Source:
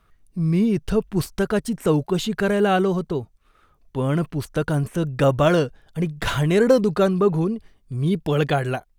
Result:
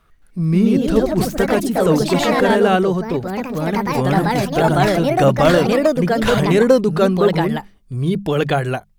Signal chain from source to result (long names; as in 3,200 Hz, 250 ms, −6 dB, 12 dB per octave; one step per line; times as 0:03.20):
mains-hum notches 50/100/150/200 Hz
delay with pitch and tempo change per echo 219 ms, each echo +3 semitones, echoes 3
level +3.5 dB